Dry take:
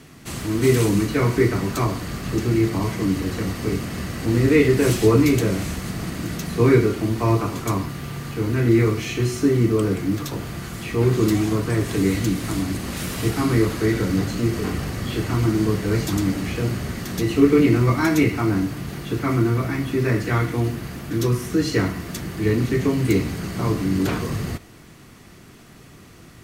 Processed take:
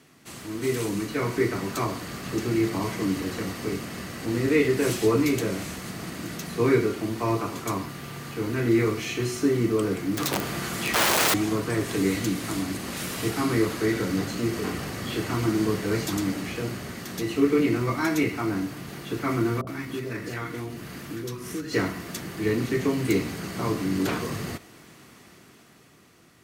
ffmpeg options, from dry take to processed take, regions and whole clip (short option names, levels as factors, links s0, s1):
-filter_complex "[0:a]asettb=1/sr,asplit=3[s0][s1][s2];[s0]atrim=end=10.174[s3];[s1]atrim=start=10.17:end=11.34,asetpts=PTS-STARTPTS,afade=t=in:d=0.004:c=qsin,afade=t=out:st=1.166:d=0.004:c=qsin,equalizer=f=92:t=o:w=1.3:g=-3.5,acontrast=76,aeval=exprs='(mod(5.31*val(0)+1,2)-1)/5.31':c=same[s4];[s2]atrim=start=11.336[s5];[s3][s4]acrossfade=d=0.004:c1=hsin:c2=qsin[s6];[s6][s5]acrossfade=d=0.004:c1=qsin:c2=hsin,asettb=1/sr,asplit=3[s7][s8][s9];[s7]atrim=end=19.614[s10];[s8]atrim=start=19.61:end=21.73,asetpts=PTS-STARTPTS,afade=t=in:d=0.004:c=qsin,afade=t=out:st=2.116:d=0.004:c=qsin,acompressor=threshold=0.0447:ratio=2.5:attack=3.2:release=140:knee=1:detection=peak,acrossover=split=690[s11][s12];[s12]adelay=60[s13];[s11][s13]amix=inputs=2:normalize=0,atrim=end_sample=93492[s14];[s9]atrim=start=21.726[s15];[s10][s14]acrossfade=d=0.004:c1=hsin:c2=qsin[s16];[s16][s15]acrossfade=d=0.004:c1=qsin:c2=hsin,highpass=f=240:p=1,dynaudnorm=f=110:g=21:m=2.37,volume=0.398"